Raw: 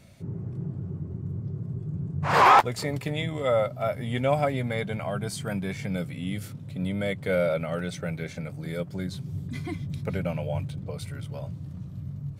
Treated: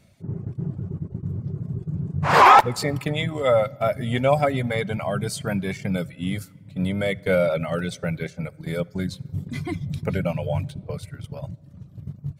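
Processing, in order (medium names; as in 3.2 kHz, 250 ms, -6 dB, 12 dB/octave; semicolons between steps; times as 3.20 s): gate -34 dBFS, range -9 dB; reverb removal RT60 0.61 s; on a send: reverberation RT60 1.8 s, pre-delay 5 ms, DRR 22 dB; on the sum: trim +5.5 dB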